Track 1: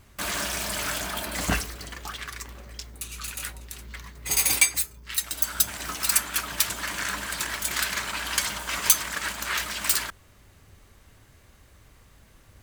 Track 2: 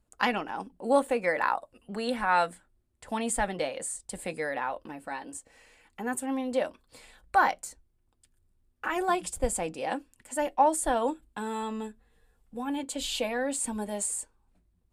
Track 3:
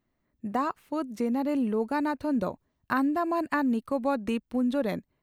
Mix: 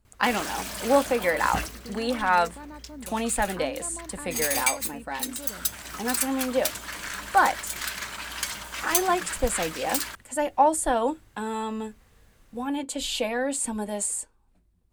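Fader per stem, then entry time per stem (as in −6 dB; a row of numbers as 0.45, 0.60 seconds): −5.0, +3.0, −15.0 decibels; 0.05, 0.00, 0.65 seconds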